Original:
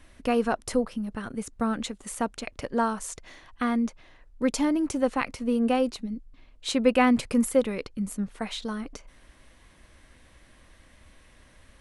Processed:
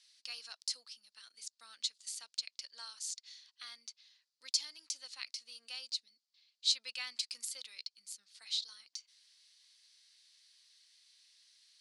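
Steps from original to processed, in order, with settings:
four-pole ladder band-pass 5,000 Hz, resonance 65%
level +9 dB

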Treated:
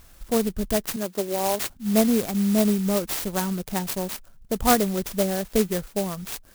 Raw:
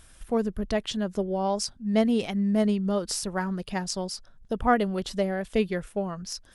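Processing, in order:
0:00.96–0:01.70: high-pass filter 280 Hz 12 dB per octave
converter with an unsteady clock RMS 0.11 ms
level +3 dB

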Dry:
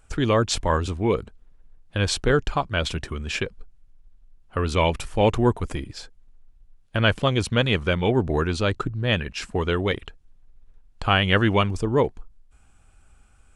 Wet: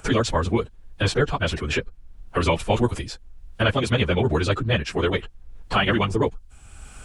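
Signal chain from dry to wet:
time stretch by phase vocoder 0.52×
multiband upward and downward compressor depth 70%
level +4 dB

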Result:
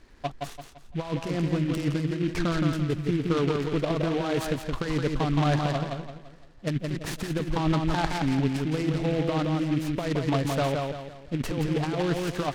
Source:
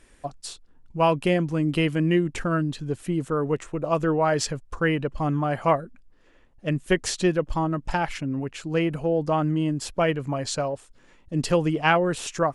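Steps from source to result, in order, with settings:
parametric band 540 Hz −4 dB 0.28 octaves
compressor whose output falls as the input rises −25 dBFS, ratio −0.5
high-frequency loss of the air 250 metres
feedback echo with a low-pass in the loop 170 ms, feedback 39%, low-pass 3,800 Hz, level −3.5 dB
short delay modulated by noise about 2,200 Hz, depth 0.06 ms

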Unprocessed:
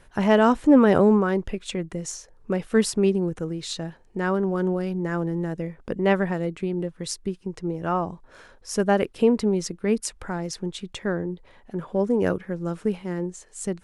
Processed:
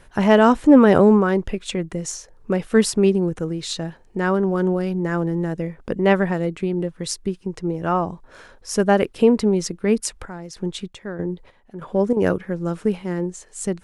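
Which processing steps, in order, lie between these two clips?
0:09.94–0:12.17: square-wave tremolo 1.6 Hz, depth 65%, duty 50%
level +4 dB

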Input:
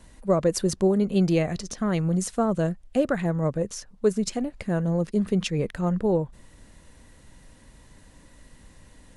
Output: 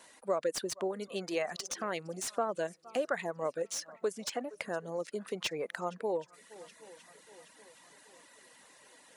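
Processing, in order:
on a send: feedback echo with a long and a short gap by turns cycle 773 ms, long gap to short 1.5 to 1, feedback 46%, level −23.5 dB
on the sum: reverb reduction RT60 0.68 s
downward compressor 2.5 to 1, threshold −28 dBFS, peak gain reduction 8.5 dB
high-pass filter 550 Hz 12 dB per octave
slew-rate limiting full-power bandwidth 110 Hz
level +2 dB

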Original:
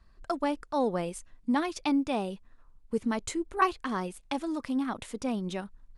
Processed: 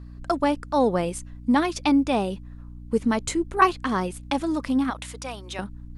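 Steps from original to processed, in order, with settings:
0:04.90–0:05.59: Bessel high-pass filter 930 Hz, order 2
mains hum 60 Hz, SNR 16 dB
level +7 dB

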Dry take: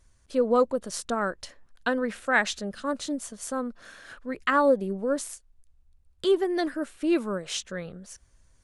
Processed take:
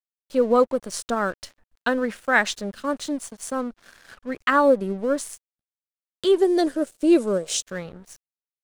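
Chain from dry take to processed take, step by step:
dead-zone distortion −48.5 dBFS
0:06.38–0:07.62: graphic EQ with 10 bands 500 Hz +9 dB, 1,000 Hz −5 dB, 2,000 Hz −5 dB, 8,000 Hz +8 dB
level +4 dB

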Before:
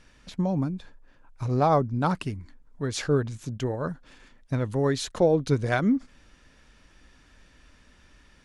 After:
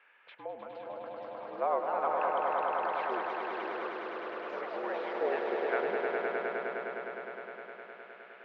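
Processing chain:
single-sideband voice off tune −58 Hz 530–2,700 Hz
delay with pitch and tempo change per echo 512 ms, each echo +3 semitones, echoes 3, each echo −6 dB
echo that builds up and dies away 103 ms, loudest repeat 5, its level −4.5 dB
one half of a high-frequency compander encoder only
level −7.5 dB

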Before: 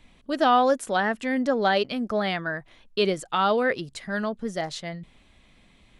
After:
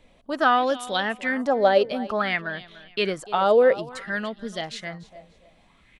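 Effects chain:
repeating echo 292 ms, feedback 27%, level −17 dB
auto-filter bell 0.56 Hz 510–3,700 Hz +13 dB
level −3 dB

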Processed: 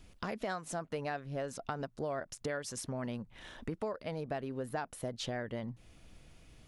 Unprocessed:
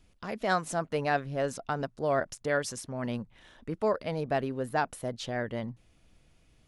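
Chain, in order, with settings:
downward compressor 6 to 1, threshold −41 dBFS, peak gain reduction 18 dB
level +5.5 dB

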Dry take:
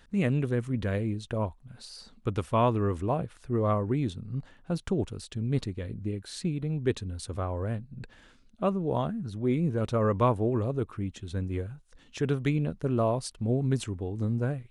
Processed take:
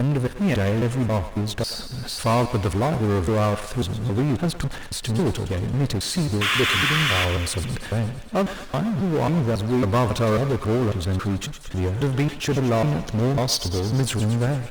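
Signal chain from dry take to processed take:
slices reordered back to front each 273 ms, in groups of 2
gain on a spectral selection 0:13.05–0:13.87, 3,000–6,800 Hz +12 dB
noise gate −52 dBFS, range −9 dB
sound drawn into the spectrogram noise, 0:06.41–0:07.25, 1,000–3,600 Hz −29 dBFS
power curve on the samples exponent 0.5
feedback echo with a high-pass in the loop 112 ms, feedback 69%, high-pass 620 Hz, level −10.5 dB
Opus 32 kbit/s 48,000 Hz

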